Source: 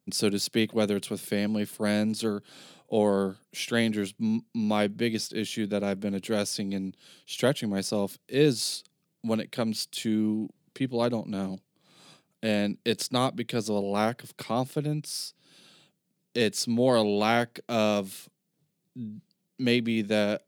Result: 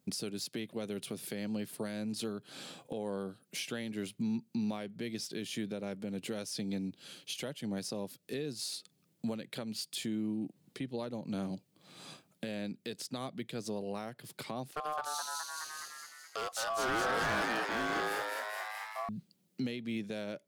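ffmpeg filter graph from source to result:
-filter_complex "[0:a]asettb=1/sr,asplit=3[a][b][c];[a]atrim=end=14.714[d];[b]atrim=start=14.71:end=19.09,asetpts=PTS-STARTPTS,afade=t=in:d=0.004:c=qsin,afade=t=out:st=4.376:d=0.004:c=qsin,aeval=exprs='val(0)*sin(2*PI*910*n/s)':c=same,asplit=9[e][f][g][h][i][j][k][l][m];[f]adelay=210,afreqshift=120,volume=-4dB[n];[g]adelay=420,afreqshift=240,volume=-8.9dB[o];[h]adelay=630,afreqshift=360,volume=-13.8dB[p];[i]adelay=840,afreqshift=480,volume=-18.6dB[q];[j]adelay=1050,afreqshift=600,volume=-23.5dB[r];[k]adelay=1260,afreqshift=720,volume=-28.4dB[s];[l]adelay=1470,afreqshift=840,volume=-33.3dB[t];[m]adelay=1680,afreqshift=960,volume=-38.2dB[u];[e][n][o][p][q][r][s][t][u]amix=inputs=9:normalize=0,atrim=end_sample=193158,asoftclip=type=hard:threshold=-24dB[v];[c]atrim=start=19.086[w];[d][v]acrossfade=d=0.004:c1=hsin:c2=qsin[x];[x][w]acrossfade=d=0.004:c1=qsin:c2=hsin,acompressor=threshold=-37dB:ratio=2.5,alimiter=level_in=7.5dB:limit=-24dB:level=0:latency=1:release=438,volume=-7.5dB,volume=3.5dB"

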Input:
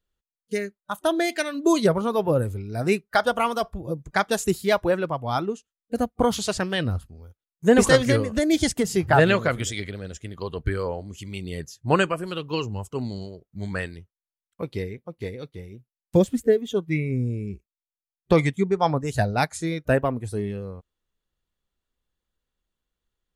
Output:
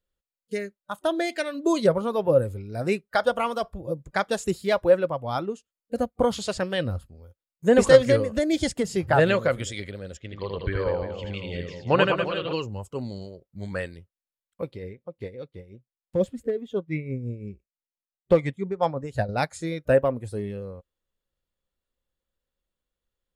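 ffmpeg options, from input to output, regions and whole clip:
-filter_complex "[0:a]asettb=1/sr,asplit=3[a][b][c];[a]atrim=end=10.174[d];[b]atrim=start=10.17:end=12.53,asetpts=PTS-STARTPTS,afade=t=in:d=0.004:c=qsin,afade=t=out:st=2.356:d=0.004:c=qsin,lowpass=f=3.7k:w=0.5412,lowpass=f=3.7k:w=1.3066,aemphasis=mode=production:type=75kf,aecho=1:1:80|192|348.8|568.3|875.6:0.631|0.398|0.251|0.158|0.1,atrim=end_sample=104076[e];[c]atrim=start=12.526[f];[d][e]acrossfade=d=0.004:c1=hsin:c2=qsin[g];[g][f]acrossfade=d=0.004:c1=qsin:c2=hsin,asettb=1/sr,asplit=3[h][i][j];[h]atrim=end=14.714[k];[i]atrim=start=14.71:end=19.29,asetpts=PTS-STARTPTS,afade=t=in:d=0.004:c=qsin,afade=t=out:st=4.576:d=0.004:c=qsin,lowpass=f=3.3k:p=1,volume=10dB,asoftclip=hard,volume=-10dB,tremolo=f=5.8:d=0.59[l];[j]atrim=start=19.286[m];[k][l]acrossfade=d=0.004:c1=hsin:c2=qsin[n];[n][m]acrossfade=d=0.004:c1=qsin:c2=hsin,bandreject=f=6k:w=12,acrossover=split=9300[o][p];[p]acompressor=threshold=-54dB:ratio=4:attack=1:release=60[q];[o][q]amix=inputs=2:normalize=0,equalizer=f=540:t=o:w=0.21:g=10,volume=-3.5dB"

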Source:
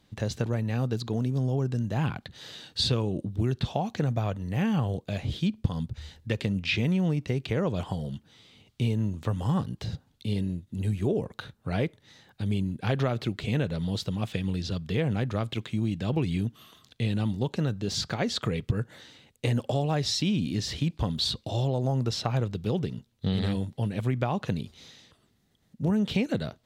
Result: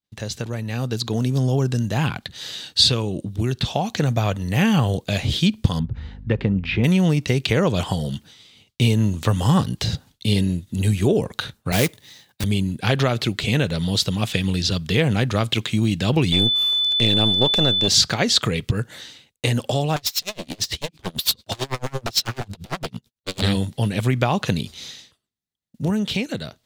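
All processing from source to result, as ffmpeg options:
-filter_complex "[0:a]asettb=1/sr,asplit=3[a][b][c];[a]atrim=end=5.794[d];[b]atrim=start=5.79:end=6.84,asetpts=PTS-STARTPTS,afade=t=in:d=0.004:c=qsin,afade=t=out:st=1.046:d=0.004:c=qsin,lowpass=1.3k,bandreject=f=620:w=7.1,aeval=exprs='val(0)+0.00562*(sin(2*PI*50*n/s)+sin(2*PI*2*50*n/s)/2+sin(2*PI*3*50*n/s)/3+sin(2*PI*4*50*n/s)/4+sin(2*PI*5*50*n/s)/5)':c=same[e];[c]atrim=start=6.836[f];[d][e]acrossfade=d=0.004:c1=hsin:c2=qsin[g];[g][f]acrossfade=d=0.004:c1=qsin:c2=hsin,asettb=1/sr,asplit=3[h][i][j];[h]atrim=end=11.724[k];[i]atrim=start=11.72:end=12.44,asetpts=PTS-STARTPTS,afade=t=in:d=0.004:c=qsin,afade=t=out:st=0.716:d=0.004:c=qsin,highpass=f=74:w=0.5412,highpass=f=74:w=1.3066,bandreject=f=1.4k:w=7.6,acrusher=bits=3:mode=log:mix=0:aa=0.000001[l];[j]atrim=start=12.436[m];[k][l]acrossfade=d=0.004:c1=hsin:c2=qsin[n];[n][m]acrossfade=d=0.004:c1=qsin:c2=hsin,asettb=1/sr,asplit=3[o][p][q];[o]atrim=end=16.324[r];[p]atrim=start=16.32:end=17.88,asetpts=PTS-STARTPTS,afade=t=in:d=0.004:c=qsin,afade=t=out:st=1.556:d=0.004:c=qsin,aeval=exprs='if(lt(val(0),0),0.251*val(0),val(0))':c=same,equalizer=f=620:w=0.99:g=6.5,aeval=exprs='val(0)+0.0251*sin(2*PI*3500*n/s)':c=same[s];[q]atrim=start=17.876[t];[r][s]acrossfade=d=0.004:c1=hsin:c2=qsin[u];[u][t]acrossfade=d=0.004:c1=qsin:c2=hsin,asettb=1/sr,asplit=3[v][w][x];[v]atrim=end=19.964[y];[w]atrim=start=19.96:end=23.42,asetpts=PTS-STARTPTS,afade=t=in:d=0.004:c=qsin,afade=t=out:st=3.456:d=0.004:c=qsin,aeval=exprs='0.0398*(abs(mod(val(0)/0.0398+3,4)-2)-1)':c=same,aeval=exprs='val(0)*pow(10,-30*(0.5-0.5*cos(2*PI*9*n/s))/20)':c=same[z];[x]atrim=start=23.416[aa];[y][z]acrossfade=d=0.004:c1=hsin:c2=qsin[ab];[ab][aa]acrossfade=d=0.004:c1=qsin:c2=hsin,agate=range=-33dB:threshold=-48dB:ratio=3:detection=peak,highshelf=f=2.1k:g=10.5,dynaudnorm=f=170:g=13:m=11.5dB,volume=-1dB"

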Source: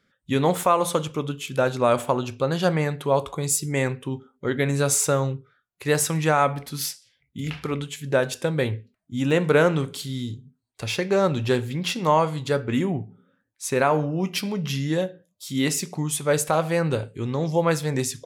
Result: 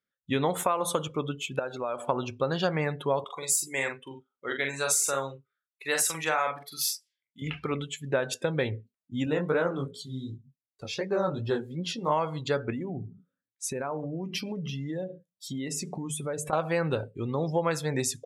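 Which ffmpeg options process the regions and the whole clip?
-filter_complex "[0:a]asettb=1/sr,asplit=3[a][b][c];[a]atrim=end=1.594[d];[b]atrim=start=1.59:end=2.07,asetpts=PTS-STARTPTS,afade=t=in:d=0.004:c=qsin,afade=t=out:st=0.476:d=0.004:c=qsin,bass=f=250:g=-9,treble=f=4k:g=-2,acompressor=threshold=-29dB:ratio=3:attack=3.2:release=140:knee=1:detection=peak[e];[c]atrim=start=2.066[f];[d][e]acrossfade=d=0.004:c1=hsin:c2=qsin[g];[g][f]acrossfade=d=0.004:c1=qsin:c2=hsin,asettb=1/sr,asplit=3[h][i][j];[h]atrim=end=3.244[k];[i]atrim=start=3.24:end=7.42,asetpts=PTS-STARTPTS,afade=t=in:d=0.004:c=qsin,afade=t=out:st=4.176:d=0.004:c=qsin,highpass=f=940:p=1,asplit=2[l][m];[m]adelay=44,volume=-3.5dB[n];[l][n]amix=inputs=2:normalize=0,atrim=end_sample=184338[o];[j]atrim=start=7.416[p];[k][o]acrossfade=d=0.004:c1=hsin:c2=qsin[q];[q][p]acrossfade=d=0.004:c1=qsin:c2=hsin,asettb=1/sr,asplit=3[r][s][t];[r]atrim=end=9.254[u];[s]atrim=start=9.25:end=12.12,asetpts=PTS-STARTPTS,afade=t=in:d=0.004:c=qsin,afade=t=out:st=2.866:d=0.004:c=qsin,equalizer=f=2.5k:w=1.7:g=-6.5,flanger=delay=16.5:depth=6.2:speed=2.7[v];[t]atrim=start=12.116[w];[u][v]acrossfade=d=0.004:c1=hsin:c2=qsin[x];[x][w]acrossfade=d=0.004:c1=qsin:c2=hsin,asettb=1/sr,asplit=3[y][z][aa];[y]atrim=end=12.704[ab];[z]atrim=start=12.7:end=16.53,asetpts=PTS-STARTPTS,afade=t=in:d=0.004:c=qsin,afade=t=out:st=3.826:d=0.004:c=qsin,lowshelf=f=490:g=6,bandreject=f=50:t=h:w=6,bandreject=f=100:t=h:w=6,bandreject=f=150:t=h:w=6,bandreject=f=200:t=h:w=6,acompressor=threshold=-26dB:ratio=12:attack=3.2:release=140:knee=1:detection=peak[ac];[aa]atrim=start=16.526[ad];[ab][ac]acrossfade=d=0.004:c1=hsin:c2=qsin[ae];[ae][ad]acrossfade=d=0.004:c1=qsin:c2=hsin,afftdn=nr=21:nf=-39,lowshelf=f=350:g=-6,acompressor=threshold=-22dB:ratio=6"

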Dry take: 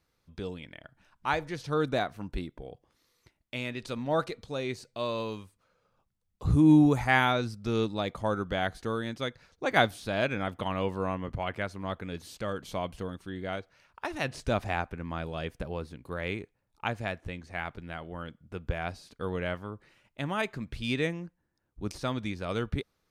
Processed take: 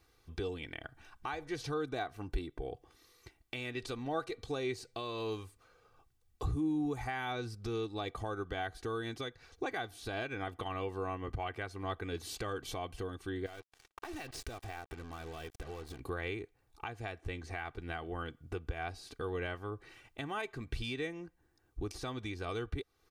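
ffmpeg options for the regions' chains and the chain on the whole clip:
-filter_complex "[0:a]asettb=1/sr,asplit=3[a][b][c];[a]atrim=end=13.464[d];[b]atrim=start=13.46:end=16,asetpts=PTS-STARTPTS,afade=t=in:d=0.004:c=qsin,afade=t=out:st=2.536:d=0.004:c=qsin,aeval=exprs='if(lt(val(0),0),0.708*val(0),val(0))':c=same,acompressor=threshold=-46dB:ratio=8:attack=3.2:release=140:knee=1:detection=peak,acrusher=bits=8:mix=0:aa=0.5[e];[c]atrim=start=15.996[f];[d][e]acrossfade=d=0.004:c1=hsin:c2=qsin[g];[g][f]acrossfade=d=0.004:c1=qsin:c2=hsin,acompressor=threshold=-45dB:ratio=2,alimiter=level_in=8.5dB:limit=-24dB:level=0:latency=1:release=309,volume=-8.5dB,aecho=1:1:2.6:0.67,volume=5dB"

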